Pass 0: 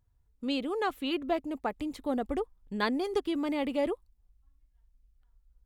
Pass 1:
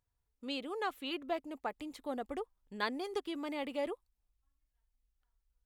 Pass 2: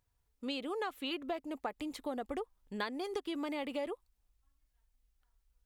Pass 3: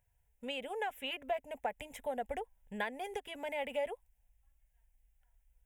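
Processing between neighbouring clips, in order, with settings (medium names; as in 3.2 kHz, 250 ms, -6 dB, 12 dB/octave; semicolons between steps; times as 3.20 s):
bass shelf 290 Hz -11.5 dB; trim -4 dB
compression, threshold -39 dBFS, peak gain reduction 10 dB; trim +5 dB
static phaser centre 1.2 kHz, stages 6; trim +4 dB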